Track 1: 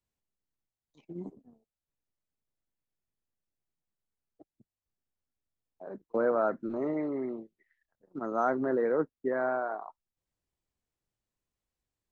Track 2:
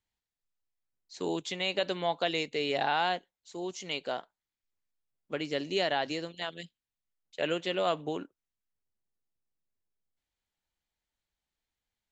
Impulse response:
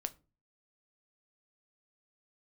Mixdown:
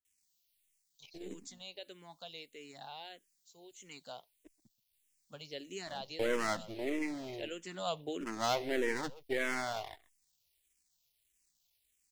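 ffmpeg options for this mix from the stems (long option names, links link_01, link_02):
-filter_complex "[0:a]aeval=exprs='if(lt(val(0),0),0.447*val(0),val(0))':channel_layout=same,aexciter=amount=10:drive=4.1:freq=2000,adelay=50,volume=-1dB,asplit=2[link_01][link_02];[link_02]volume=-20.5dB[link_03];[1:a]bass=frequency=250:gain=4,treble=frequency=4000:gain=15,volume=-4.5dB,afade=type=in:start_time=3.67:duration=0.34:silence=0.473151,afade=type=in:start_time=7.57:duration=0.5:silence=0.421697[link_04];[link_03]aecho=0:1:129:1[link_05];[link_01][link_04][link_05]amix=inputs=3:normalize=0,asplit=2[link_06][link_07];[link_07]afreqshift=-1.6[link_08];[link_06][link_08]amix=inputs=2:normalize=1"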